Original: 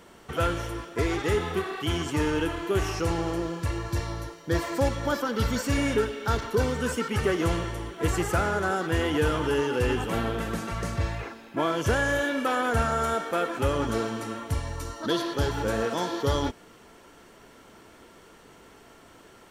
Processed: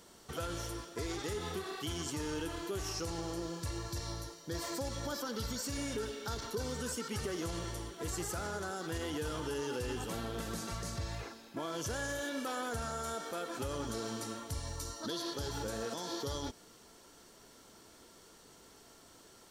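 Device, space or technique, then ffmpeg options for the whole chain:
over-bright horn tweeter: -af "highshelf=frequency=3400:width_type=q:width=1.5:gain=8,alimiter=limit=-21dB:level=0:latency=1:release=90,volume=-8dB"

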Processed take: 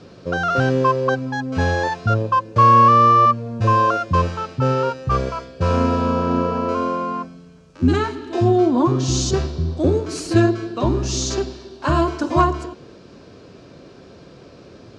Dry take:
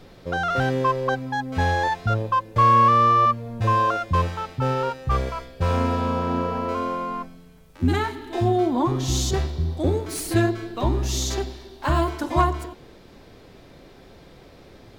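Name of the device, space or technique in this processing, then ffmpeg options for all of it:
car door speaker: -af "highpass=92,equalizer=frequency=820:width_type=q:width=4:gain=-8,equalizer=frequency=2000:width_type=q:width=4:gain=-10,equalizer=frequency=3500:width_type=q:width=4:gain=-7,lowpass=frequency=6900:width=0.5412,lowpass=frequency=6900:width=1.3066,volume=6dB"

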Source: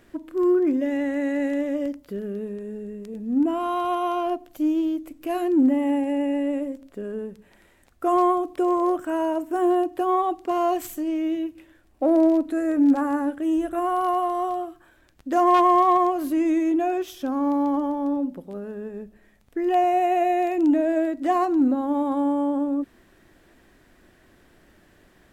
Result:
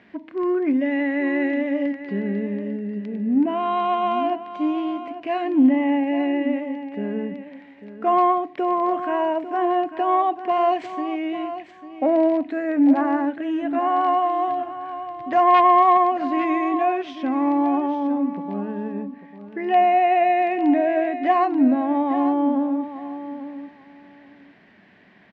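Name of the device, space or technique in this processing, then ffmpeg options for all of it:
kitchen radio: -filter_complex "[0:a]asettb=1/sr,asplit=3[link_01][link_02][link_03];[link_01]atrim=end=14.484[link_04];[link_02]atrim=start=14.48:end=15.64,asetpts=PTS-STARTPTS,afade=type=in:duration=0.004:curve=qsin,afade=type=out:start_time=1.156:duration=0.004:curve=qsin,lowshelf=frequency=160:width_type=q:width=3:gain=7.5[link_05];[link_03]atrim=start=15.636[link_06];[link_04][link_05]acrossfade=duration=0.004:curve1=hsin:curve2=qsin[link_07];[link_07][link_06]acrossfade=duration=0.004:curve1=qsin:curve2=hsin,highpass=190,equalizer=frequency=200:width_type=q:width=4:gain=6,equalizer=frequency=340:width_type=q:width=4:gain=-9,equalizer=frequency=510:width_type=q:width=4:gain=-7,equalizer=frequency=1300:width_type=q:width=4:gain=-7,equalizer=frequency=2100:width_type=q:width=4:gain=5,equalizer=frequency=3500:width_type=q:width=4:gain=-4,lowpass=frequency=3800:width=0.5412,lowpass=frequency=3800:width=1.3066,aecho=1:1:847|1694:0.251|0.0427,volume=5.5dB"

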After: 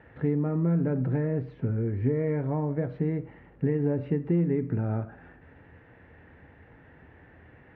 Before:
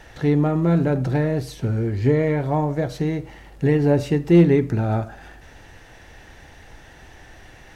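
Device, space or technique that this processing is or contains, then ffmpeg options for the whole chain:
bass amplifier: -af "acompressor=threshold=-19dB:ratio=5,highpass=72,equalizer=frequency=81:width_type=q:width=4:gain=7,equalizer=frequency=120:width_type=q:width=4:gain=4,equalizer=frequency=170:width_type=q:width=4:gain=6,equalizer=frequency=260:width_type=q:width=4:gain=7,equalizer=frequency=460:width_type=q:width=4:gain=5,equalizer=frequency=740:width_type=q:width=4:gain=-4,lowpass=frequency=2200:width=0.5412,lowpass=frequency=2200:width=1.3066,volume=-8dB"

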